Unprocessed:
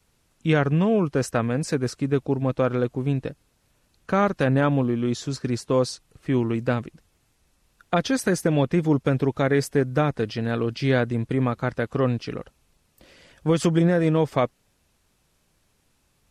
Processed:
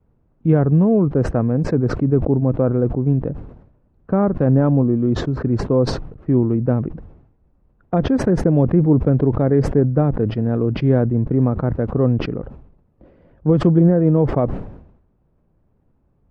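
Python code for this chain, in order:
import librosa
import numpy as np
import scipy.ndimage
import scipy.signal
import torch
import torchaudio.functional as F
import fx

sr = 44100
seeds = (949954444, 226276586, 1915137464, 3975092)

y = scipy.signal.sosfilt(scipy.signal.butter(2, 1200.0, 'lowpass', fs=sr, output='sos'), x)
y = fx.tilt_shelf(y, sr, db=7.5, hz=860.0)
y = fx.sustainer(y, sr, db_per_s=72.0)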